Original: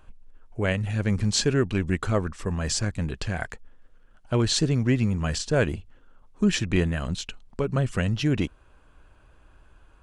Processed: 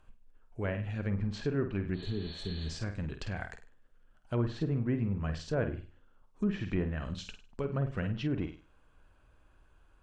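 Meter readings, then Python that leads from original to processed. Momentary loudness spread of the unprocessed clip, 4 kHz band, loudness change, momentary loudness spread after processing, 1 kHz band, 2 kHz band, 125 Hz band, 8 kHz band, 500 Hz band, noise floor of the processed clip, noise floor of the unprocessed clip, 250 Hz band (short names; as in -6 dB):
9 LU, -15.0 dB, -9.0 dB, 9 LU, -10.0 dB, -11.0 dB, -8.5 dB, -23.5 dB, -8.5 dB, -63 dBFS, -55 dBFS, -8.0 dB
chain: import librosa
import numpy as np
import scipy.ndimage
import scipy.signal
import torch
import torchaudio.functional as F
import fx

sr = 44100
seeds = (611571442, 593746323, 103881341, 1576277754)

y = fx.room_flutter(x, sr, wall_m=8.6, rt60_s=0.36)
y = fx.spec_repair(y, sr, seeds[0], start_s=1.97, length_s=0.74, low_hz=460.0, high_hz=4500.0, source='after')
y = fx.env_lowpass_down(y, sr, base_hz=1500.0, full_db=-18.5)
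y = F.gain(torch.from_numpy(y), -9.0).numpy()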